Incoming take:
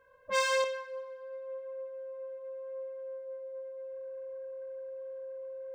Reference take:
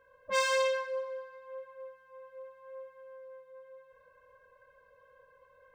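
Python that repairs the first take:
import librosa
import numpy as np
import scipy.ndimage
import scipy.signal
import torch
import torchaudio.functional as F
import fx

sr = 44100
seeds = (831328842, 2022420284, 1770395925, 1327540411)

y = fx.notch(x, sr, hz=530.0, q=30.0)
y = fx.gain(y, sr, db=fx.steps((0.0, 0.0), (0.64, 5.5)))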